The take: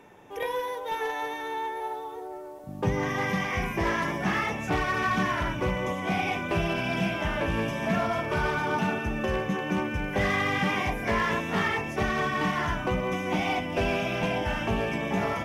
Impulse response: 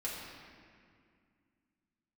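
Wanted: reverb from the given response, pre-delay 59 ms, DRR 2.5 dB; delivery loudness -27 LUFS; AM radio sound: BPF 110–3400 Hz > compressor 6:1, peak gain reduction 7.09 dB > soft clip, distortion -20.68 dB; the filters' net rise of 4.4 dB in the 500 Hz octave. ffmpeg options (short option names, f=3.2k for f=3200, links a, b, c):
-filter_complex "[0:a]equalizer=f=500:t=o:g=5.5,asplit=2[a][b];[1:a]atrim=start_sample=2205,adelay=59[c];[b][c]afir=irnorm=-1:irlink=0,volume=-5dB[d];[a][d]amix=inputs=2:normalize=0,highpass=110,lowpass=3.4k,acompressor=threshold=-25dB:ratio=6,asoftclip=threshold=-21dB,volume=3dB"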